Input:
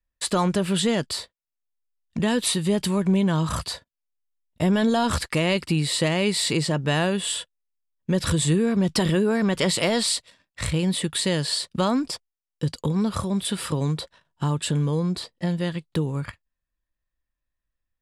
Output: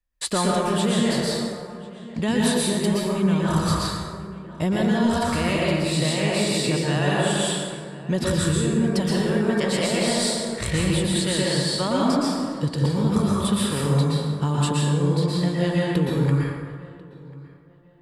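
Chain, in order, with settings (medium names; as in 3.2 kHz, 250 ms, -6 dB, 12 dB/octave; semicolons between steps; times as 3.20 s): on a send: filtered feedback delay 1042 ms, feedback 31%, low-pass 2.6 kHz, level -21.5 dB; on the sum: plate-style reverb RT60 1.7 s, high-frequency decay 0.5×, pre-delay 105 ms, DRR -5.5 dB; gain riding within 4 dB 0.5 s; trim -4 dB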